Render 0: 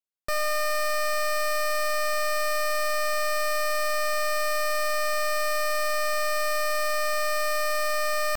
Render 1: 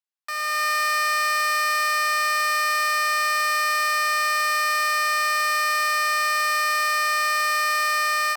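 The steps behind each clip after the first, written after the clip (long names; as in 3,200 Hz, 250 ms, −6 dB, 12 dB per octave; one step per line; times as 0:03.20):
elliptic high-pass filter 770 Hz, stop band 50 dB
high-shelf EQ 9,200 Hz −7 dB
automatic gain control gain up to 8 dB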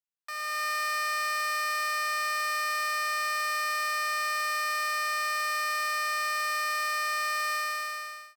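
fade-out on the ending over 0.83 s
level −7.5 dB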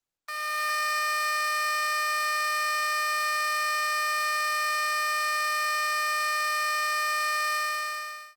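level +2.5 dB
Opus 24 kbit/s 48,000 Hz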